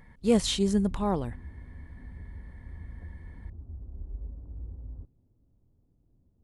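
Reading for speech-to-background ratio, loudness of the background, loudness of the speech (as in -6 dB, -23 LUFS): 18.0 dB, -45.0 LUFS, -27.0 LUFS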